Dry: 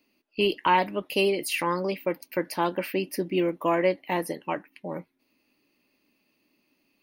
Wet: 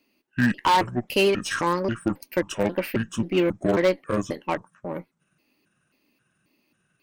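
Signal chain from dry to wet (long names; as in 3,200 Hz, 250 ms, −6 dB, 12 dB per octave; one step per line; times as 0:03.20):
pitch shifter gated in a rhythm −9 semitones, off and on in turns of 269 ms
wave folding −14.5 dBFS
harmonic generator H 7 −31 dB, 8 −28 dB, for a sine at −14.5 dBFS
level +3.5 dB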